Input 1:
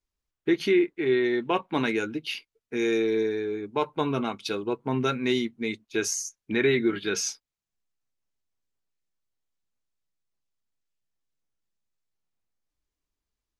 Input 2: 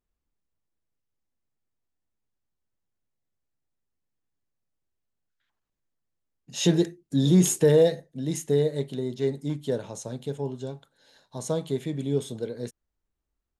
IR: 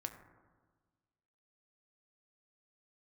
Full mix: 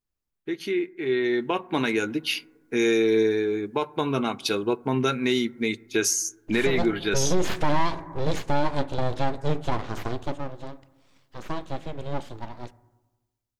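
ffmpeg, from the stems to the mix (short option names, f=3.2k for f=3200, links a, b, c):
-filter_complex "[0:a]volume=-9.5dB,asplit=3[a][b][c];[b]volume=-12dB[d];[1:a]aeval=exprs='abs(val(0))':c=same,acontrast=61,lowpass=4.1k,volume=-13dB,afade=t=out:st=10.03:d=0.46:silence=0.316228,asplit=2[e][f];[f]volume=-5.5dB[g];[c]apad=whole_len=599691[h];[e][h]sidechaincompress=threshold=-37dB:ratio=8:attack=16:release=332[i];[2:a]atrim=start_sample=2205[j];[d][g]amix=inputs=2:normalize=0[k];[k][j]afir=irnorm=-1:irlink=0[l];[a][i][l]amix=inputs=3:normalize=0,highshelf=f=8.2k:g=10.5,dynaudnorm=f=510:g=5:m=13dB,alimiter=limit=-12.5dB:level=0:latency=1:release=262"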